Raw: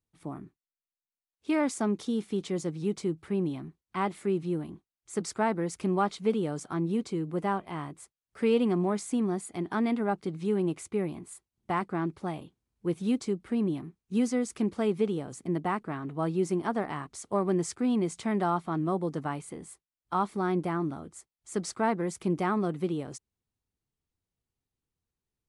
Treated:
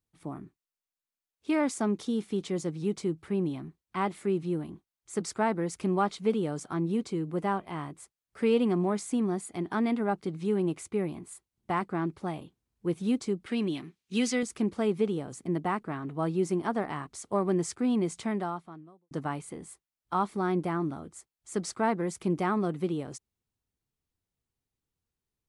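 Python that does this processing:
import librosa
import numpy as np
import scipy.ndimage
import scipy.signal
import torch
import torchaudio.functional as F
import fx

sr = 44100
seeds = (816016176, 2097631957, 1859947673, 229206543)

y = fx.weighting(x, sr, curve='D', at=(13.46, 14.43))
y = fx.edit(y, sr, fx.fade_out_span(start_s=18.22, length_s=0.89, curve='qua'), tone=tone)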